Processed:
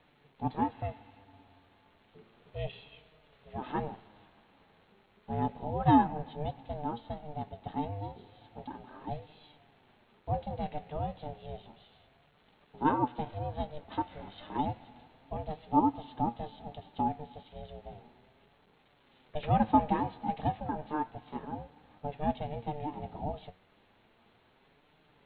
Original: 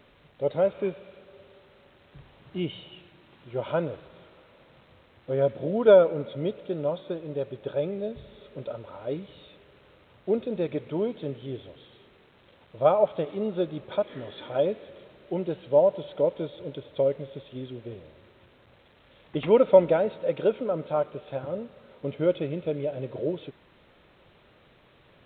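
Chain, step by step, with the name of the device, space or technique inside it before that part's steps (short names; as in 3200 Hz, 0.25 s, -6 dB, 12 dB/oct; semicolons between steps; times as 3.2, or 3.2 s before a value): alien voice (ring modulator 300 Hz; flange 0.32 Hz, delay 6.3 ms, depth 4.9 ms, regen +62%)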